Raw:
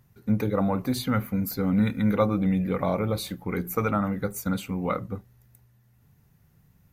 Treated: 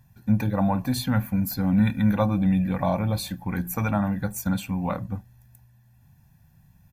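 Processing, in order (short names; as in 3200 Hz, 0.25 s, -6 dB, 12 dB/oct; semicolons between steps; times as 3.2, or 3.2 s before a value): comb 1.2 ms, depth 79%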